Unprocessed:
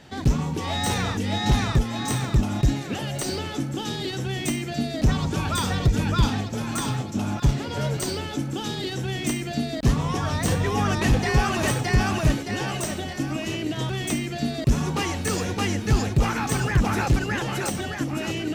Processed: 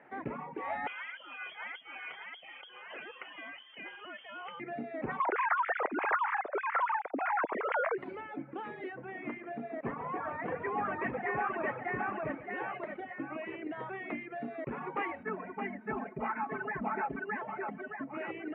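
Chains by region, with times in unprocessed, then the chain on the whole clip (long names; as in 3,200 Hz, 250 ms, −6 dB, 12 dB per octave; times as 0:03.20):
0:00.87–0:04.60: voice inversion scrambler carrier 3,300 Hz + downward compressor 3 to 1, threshold −25 dBFS
0:05.20–0:07.98: three sine waves on the formant tracks + parametric band 1,300 Hz +6.5 dB 1.4 octaves + downward compressor 10 to 1, threshold −20 dBFS
0:08.92–0:12.51: high-frequency loss of the air 240 metres + feedback echo at a low word length 142 ms, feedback 55%, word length 7 bits, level −8 dB
0:15.23–0:18.14: head-to-tape spacing loss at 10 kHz 33 dB + notch filter 470 Hz, Q 5.6 + comb filter 4.6 ms, depth 84%
whole clip: high-pass filter 390 Hz 12 dB per octave; reverb reduction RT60 1.2 s; elliptic low-pass filter 2,200 Hz, stop band 60 dB; level −4 dB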